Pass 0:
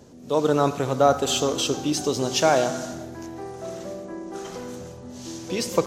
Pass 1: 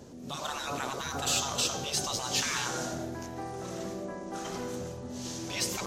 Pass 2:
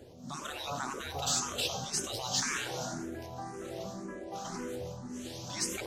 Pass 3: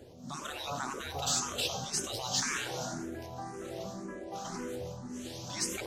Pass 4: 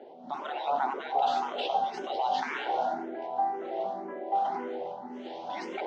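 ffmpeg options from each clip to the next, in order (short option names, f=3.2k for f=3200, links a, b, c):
-af "afftfilt=real='re*lt(hypot(re,im),0.141)':imag='im*lt(hypot(re,im),0.141)':win_size=1024:overlap=0.75"
-filter_complex "[0:a]asplit=2[a][b];[b]afreqshift=1.9[c];[a][c]amix=inputs=2:normalize=1"
-af anull
-af "highpass=f=310:w=0.5412,highpass=f=310:w=1.3066,equalizer=f=320:t=q:w=4:g=-6,equalizer=f=500:t=q:w=4:g=-6,equalizer=f=790:t=q:w=4:g=9,equalizer=f=1.2k:t=q:w=4:g=-10,equalizer=f=1.7k:t=q:w=4:g=-8,equalizer=f=2.5k:t=q:w=4:g=-9,lowpass=f=2.6k:w=0.5412,lowpass=f=2.6k:w=1.3066,volume=9dB"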